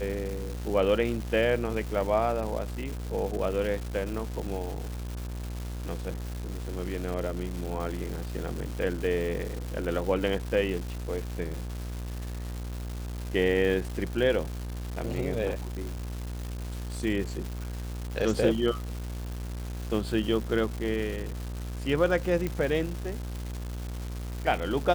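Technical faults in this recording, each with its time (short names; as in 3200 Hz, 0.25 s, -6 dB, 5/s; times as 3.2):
buzz 60 Hz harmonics 29 -35 dBFS
crackle 480/s -34 dBFS
22.47 pop -17 dBFS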